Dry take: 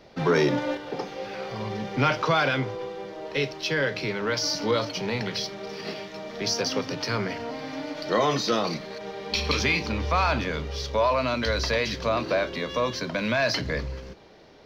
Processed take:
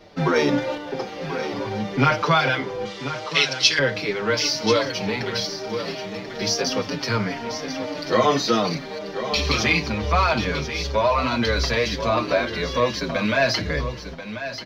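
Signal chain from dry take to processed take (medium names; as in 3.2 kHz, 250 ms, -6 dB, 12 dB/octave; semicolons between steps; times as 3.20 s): 2.85–3.79 s: frequency weighting ITU-R 468; delay 1037 ms -10.5 dB; endless flanger 6 ms -2.8 Hz; trim +6.5 dB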